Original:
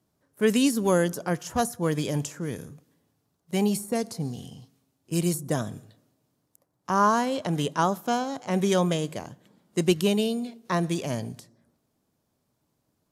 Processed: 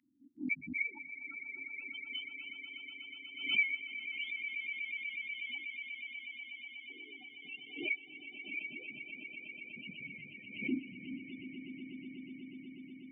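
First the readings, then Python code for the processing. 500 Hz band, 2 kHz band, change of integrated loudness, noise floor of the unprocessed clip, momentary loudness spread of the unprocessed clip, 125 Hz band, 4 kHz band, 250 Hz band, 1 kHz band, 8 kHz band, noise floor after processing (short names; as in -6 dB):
-31.0 dB, +0.5 dB, -13.5 dB, -75 dBFS, 12 LU, under -30 dB, -7.5 dB, -18.5 dB, under -35 dB, under -40 dB, -54 dBFS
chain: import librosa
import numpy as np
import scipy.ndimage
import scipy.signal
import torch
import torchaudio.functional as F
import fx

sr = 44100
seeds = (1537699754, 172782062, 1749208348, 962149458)

p1 = fx.octave_mirror(x, sr, pivot_hz=670.0)
p2 = fx.highpass(p1, sr, hz=110.0, slope=6)
p3 = fx.tilt_eq(p2, sr, slope=-3.5)
p4 = fx.hpss(p3, sr, part='harmonic', gain_db=-13)
p5 = fx.formant_cascade(p4, sr, vowel='i')
p6 = (np.mod(10.0 ** (33.5 / 20.0) * p5 + 1.0, 2.0) - 1.0) / 10.0 ** (33.5 / 20.0)
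p7 = p5 + (p6 * librosa.db_to_amplitude(-4.0))
p8 = fx.spec_topn(p7, sr, count=8)
p9 = fx.filter_sweep_highpass(p8, sr, from_hz=2000.0, to_hz=490.0, start_s=7.66, end_s=10.77, q=4.4)
p10 = p9 + fx.echo_swell(p9, sr, ms=122, loudest=8, wet_db=-12.0, dry=0)
p11 = fx.pre_swell(p10, sr, db_per_s=90.0)
y = p11 * librosa.db_to_amplitude(6.0)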